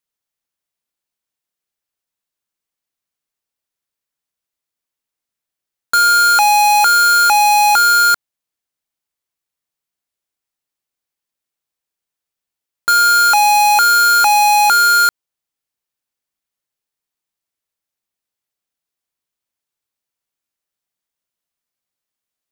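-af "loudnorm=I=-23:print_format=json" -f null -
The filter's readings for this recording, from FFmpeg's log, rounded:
"input_i" : "-10.3",
"input_tp" : "-8.3",
"input_lra" : "13.4",
"input_thresh" : "-20.4",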